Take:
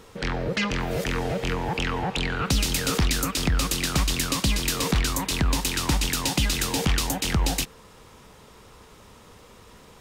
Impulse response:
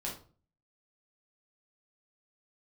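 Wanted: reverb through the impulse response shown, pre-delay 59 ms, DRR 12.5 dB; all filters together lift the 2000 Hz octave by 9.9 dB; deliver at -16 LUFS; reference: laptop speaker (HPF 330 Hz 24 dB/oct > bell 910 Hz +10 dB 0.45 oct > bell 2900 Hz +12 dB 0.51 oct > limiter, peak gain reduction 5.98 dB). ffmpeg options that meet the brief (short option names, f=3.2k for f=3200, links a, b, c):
-filter_complex "[0:a]equalizer=f=2k:t=o:g=6,asplit=2[a][b];[1:a]atrim=start_sample=2205,adelay=59[c];[b][c]afir=irnorm=-1:irlink=0,volume=-14dB[d];[a][d]amix=inputs=2:normalize=0,highpass=f=330:w=0.5412,highpass=f=330:w=1.3066,equalizer=f=910:t=o:w=0.45:g=10,equalizer=f=2.9k:t=o:w=0.51:g=12,volume=5dB,alimiter=limit=-5dB:level=0:latency=1"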